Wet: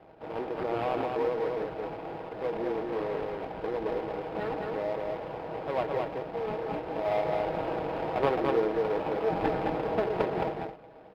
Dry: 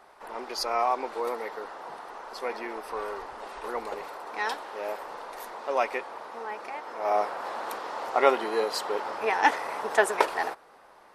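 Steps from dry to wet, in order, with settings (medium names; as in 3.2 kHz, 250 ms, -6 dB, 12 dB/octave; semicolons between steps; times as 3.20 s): median filter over 41 samples; high-pass 49 Hz; comb 6.3 ms, depth 47%; in parallel at -1.5 dB: compressor with a negative ratio -40 dBFS; on the sum: sample-rate reducer 5.8 kHz, jitter 20%; distance through air 440 m; on a send: delay 216 ms -3 dB; on the sum: endings held to a fixed fall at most 130 dB/s; trim +1.5 dB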